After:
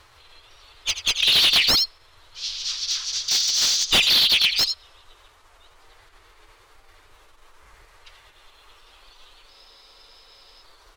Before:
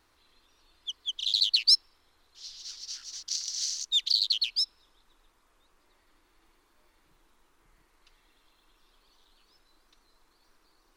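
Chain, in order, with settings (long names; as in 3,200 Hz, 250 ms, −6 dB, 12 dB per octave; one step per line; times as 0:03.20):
low shelf with overshoot 120 Hz +7.5 dB, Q 3
phase-vocoder pitch shift with formants kept +4.5 semitones
in parallel at −9 dB: soft clipping −21 dBFS, distortion −12 dB
on the sum: pitch-shifted copies added −4 semitones −4 dB
mid-hump overdrive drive 8 dB, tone 5,700 Hz, clips at −7 dBFS
on a send: single-tap delay 84 ms −11 dB
on the sum: frozen spectrum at 0:09.51, 1.12 s
slew-rate limiting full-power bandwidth 280 Hz
level +8 dB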